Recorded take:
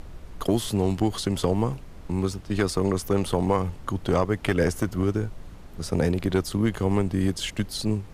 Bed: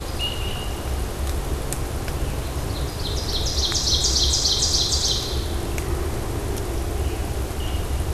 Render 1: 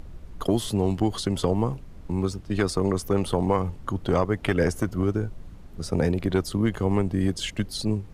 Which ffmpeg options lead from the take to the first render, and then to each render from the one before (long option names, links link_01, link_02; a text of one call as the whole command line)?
ffmpeg -i in.wav -af "afftdn=noise_reduction=6:noise_floor=-43" out.wav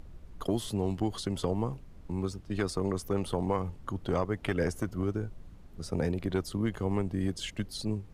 ffmpeg -i in.wav -af "volume=-7dB" out.wav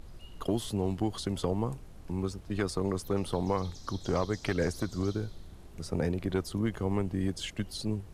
ffmpeg -i in.wav -i bed.wav -filter_complex "[1:a]volume=-29.5dB[link_01];[0:a][link_01]amix=inputs=2:normalize=0" out.wav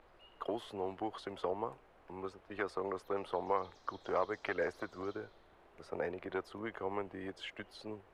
ffmpeg -i in.wav -filter_complex "[0:a]acrossover=split=420 2700:gain=0.0708 1 0.0794[link_01][link_02][link_03];[link_01][link_02][link_03]amix=inputs=3:normalize=0" out.wav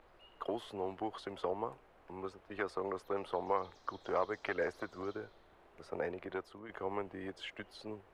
ffmpeg -i in.wav -filter_complex "[0:a]asplit=2[link_01][link_02];[link_01]atrim=end=6.69,asetpts=PTS-STARTPTS,afade=type=out:start_time=6.04:duration=0.65:curve=qsin:silence=0.298538[link_03];[link_02]atrim=start=6.69,asetpts=PTS-STARTPTS,afade=type=in:duration=0.004:curve=hsin:silence=0.298538[link_04];[link_03][link_04]concat=n=2:v=0:a=1" out.wav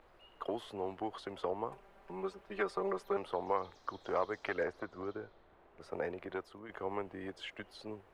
ffmpeg -i in.wav -filter_complex "[0:a]asettb=1/sr,asplit=3[link_01][link_02][link_03];[link_01]atrim=end=1.714[link_04];[link_02]atrim=start=1.71:end=3.17,asetpts=PTS-STARTPTS,afade=type=in:duration=0.004:curve=qsin,afade=type=out:start_time=1.456:duration=0.004:curve=qsin,aecho=1:1:5.1:0.9,atrim=end_sample=64386[link_05];[link_03]atrim=start=3.166[link_06];[link_04][link_05]acrossfade=duration=0.004:curve1=hsin:curve2=qsin[link_07];[link_07][link_06]acrossfade=duration=0.004:curve1=qsin:curve2=hsin,asettb=1/sr,asplit=3[link_08][link_09][link_10];[link_08]atrim=end=4.634[link_11];[link_09]atrim=start=4.63:end=5.81,asetpts=PTS-STARTPTS,afade=type=in:duration=0.004:curve=qsin,afade=type=out:start_time=1.176:duration=0.004:curve=qsin,lowpass=frequency=2300:poles=1[link_12];[link_10]atrim=start=5.806[link_13];[link_11][link_12]acrossfade=duration=0.004:curve1=hsin:curve2=qsin[link_14];[link_14][link_13]acrossfade=duration=0.004:curve1=qsin:curve2=hsin" out.wav